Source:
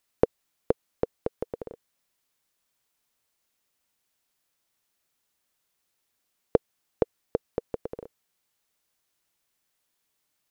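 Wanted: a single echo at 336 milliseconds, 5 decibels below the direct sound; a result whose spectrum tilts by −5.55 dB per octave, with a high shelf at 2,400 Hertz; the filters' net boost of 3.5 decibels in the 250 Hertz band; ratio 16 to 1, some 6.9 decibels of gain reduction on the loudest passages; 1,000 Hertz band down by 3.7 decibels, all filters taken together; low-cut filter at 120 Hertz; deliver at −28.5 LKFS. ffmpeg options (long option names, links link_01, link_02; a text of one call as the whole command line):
ffmpeg -i in.wav -af "highpass=120,equalizer=frequency=250:width_type=o:gain=5.5,equalizer=frequency=1000:width_type=o:gain=-4.5,highshelf=frequency=2400:gain=-8.5,acompressor=threshold=-22dB:ratio=16,aecho=1:1:336:0.562,volume=7.5dB" out.wav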